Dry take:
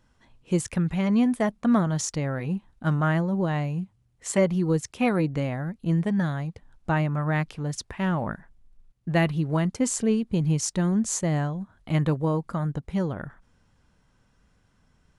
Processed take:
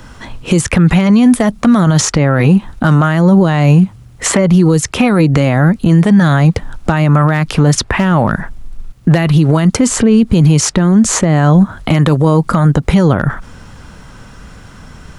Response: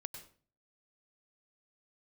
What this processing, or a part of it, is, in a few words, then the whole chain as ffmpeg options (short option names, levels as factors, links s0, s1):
mastering chain: -filter_complex "[0:a]equalizer=f=1300:t=o:w=0.31:g=3.5,acrossover=split=180|3200[s0][s1][s2];[s0]acompressor=threshold=0.0158:ratio=4[s3];[s1]acompressor=threshold=0.0282:ratio=4[s4];[s2]acompressor=threshold=0.00447:ratio=4[s5];[s3][s4][s5]amix=inputs=3:normalize=0,acompressor=threshold=0.0251:ratio=2.5,asoftclip=type=hard:threshold=0.0631,alimiter=level_in=31.6:limit=0.891:release=50:level=0:latency=1,volume=0.891"